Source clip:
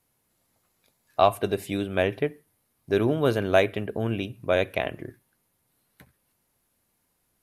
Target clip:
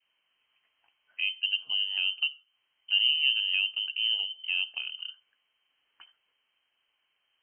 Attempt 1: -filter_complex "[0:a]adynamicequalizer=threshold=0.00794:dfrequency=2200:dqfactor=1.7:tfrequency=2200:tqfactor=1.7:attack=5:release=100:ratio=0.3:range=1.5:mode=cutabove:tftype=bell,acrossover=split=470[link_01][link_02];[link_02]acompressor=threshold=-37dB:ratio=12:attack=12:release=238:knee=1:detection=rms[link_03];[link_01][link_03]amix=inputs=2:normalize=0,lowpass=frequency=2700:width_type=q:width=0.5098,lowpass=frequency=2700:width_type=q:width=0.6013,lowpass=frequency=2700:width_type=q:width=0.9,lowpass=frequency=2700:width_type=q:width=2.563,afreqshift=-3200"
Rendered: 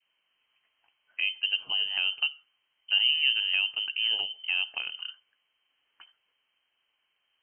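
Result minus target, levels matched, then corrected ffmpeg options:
downward compressor: peak gain reduction −10.5 dB
-filter_complex "[0:a]adynamicequalizer=threshold=0.00794:dfrequency=2200:dqfactor=1.7:tfrequency=2200:tqfactor=1.7:attack=5:release=100:ratio=0.3:range=1.5:mode=cutabove:tftype=bell,acrossover=split=470[link_01][link_02];[link_02]acompressor=threshold=-48.5dB:ratio=12:attack=12:release=238:knee=1:detection=rms[link_03];[link_01][link_03]amix=inputs=2:normalize=0,lowpass=frequency=2700:width_type=q:width=0.5098,lowpass=frequency=2700:width_type=q:width=0.6013,lowpass=frequency=2700:width_type=q:width=0.9,lowpass=frequency=2700:width_type=q:width=2.563,afreqshift=-3200"

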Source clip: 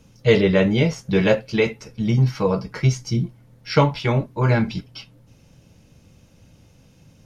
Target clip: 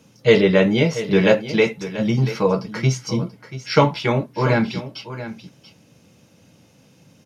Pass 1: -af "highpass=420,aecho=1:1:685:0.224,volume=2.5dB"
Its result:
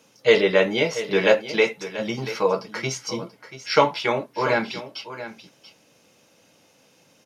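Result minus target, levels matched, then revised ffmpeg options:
125 Hz band −11.5 dB
-af "highpass=160,aecho=1:1:685:0.224,volume=2.5dB"

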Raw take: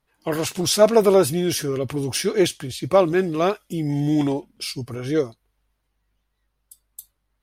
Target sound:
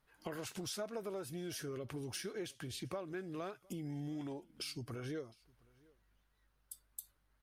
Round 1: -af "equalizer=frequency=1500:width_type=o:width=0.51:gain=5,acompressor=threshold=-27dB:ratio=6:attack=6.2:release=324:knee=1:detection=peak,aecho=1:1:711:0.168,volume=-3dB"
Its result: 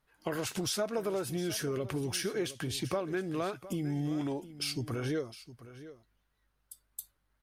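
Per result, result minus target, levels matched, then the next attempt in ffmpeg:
downward compressor: peak gain reduction −9 dB; echo-to-direct +11 dB
-af "equalizer=frequency=1500:width_type=o:width=0.51:gain=5,acompressor=threshold=-38dB:ratio=6:attack=6.2:release=324:knee=1:detection=peak,aecho=1:1:711:0.168,volume=-3dB"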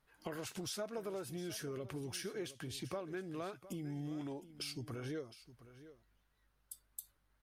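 echo-to-direct +11 dB
-af "equalizer=frequency=1500:width_type=o:width=0.51:gain=5,acompressor=threshold=-38dB:ratio=6:attack=6.2:release=324:knee=1:detection=peak,aecho=1:1:711:0.0473,volume=-3dB"

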